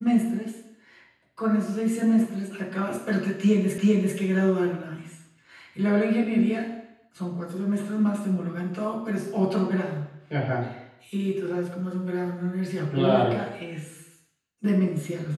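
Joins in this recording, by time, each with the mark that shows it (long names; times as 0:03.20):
0:03.78: the same again, the last 0.39 s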